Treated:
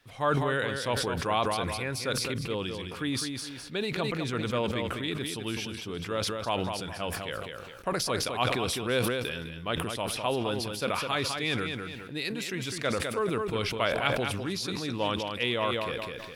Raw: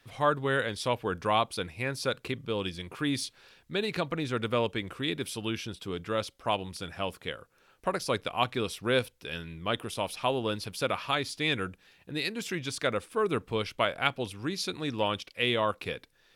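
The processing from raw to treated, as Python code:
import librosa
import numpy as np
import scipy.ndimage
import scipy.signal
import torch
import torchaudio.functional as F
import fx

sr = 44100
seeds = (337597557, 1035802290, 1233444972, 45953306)

p1 = x + fx.echo_feedback(x, sr, ms=206, feedback_pct=22, wet_db=-7.5, dry=0)
p2 = fx.sustainer(p1, sr, db_per_s=28.0)
y = p2 * 10.0 ** (-2.0 / 20.0)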